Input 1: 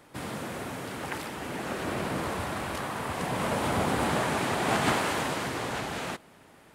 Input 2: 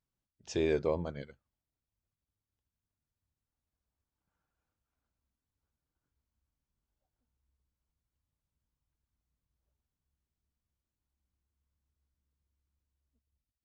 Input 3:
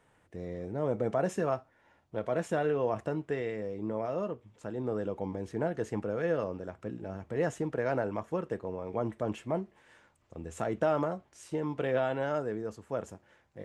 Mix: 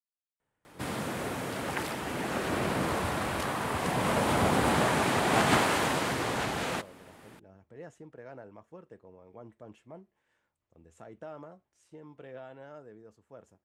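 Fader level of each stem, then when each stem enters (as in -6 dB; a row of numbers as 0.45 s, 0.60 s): +1.5 dB, mute, -16.0 dB; 0.65 s, mute, 0.40 s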